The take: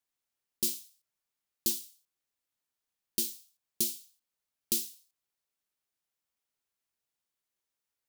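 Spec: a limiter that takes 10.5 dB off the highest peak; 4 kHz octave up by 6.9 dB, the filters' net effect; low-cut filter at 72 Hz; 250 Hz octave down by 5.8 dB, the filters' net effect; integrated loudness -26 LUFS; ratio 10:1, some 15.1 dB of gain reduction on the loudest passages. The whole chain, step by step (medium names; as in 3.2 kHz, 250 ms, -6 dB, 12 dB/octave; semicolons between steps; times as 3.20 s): high-pass 72 Hz; peaking EQ 250 Hz -8 dB; peaking EQ 4 kHz +8.5 dB; compression 10:1, threshold -39 dBFS; trim +22.5 dB; peak limiter -4 dBFS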